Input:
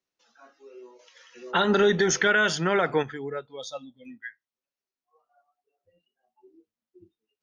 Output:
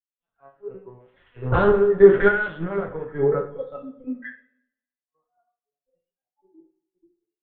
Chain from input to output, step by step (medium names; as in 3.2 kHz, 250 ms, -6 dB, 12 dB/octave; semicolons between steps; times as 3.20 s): in parallel at -4.5 dB: saturation -20 dBFS, distortion -12 dB; on the sum: compression 20:1, threshold -29 dBFS, peak gain reduction 16 dB; low-pass 1.3 kHz 12 dB/octave; LPC vocoder at 8 kHz pitch kept; harmonic-percussive split harmonic +6 dB; random-step tremolo; on a send at -1.5 dB: reverberation, pre-delay 3 ms; on the sum: three bands expanded up and down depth 100%; trim +6 dB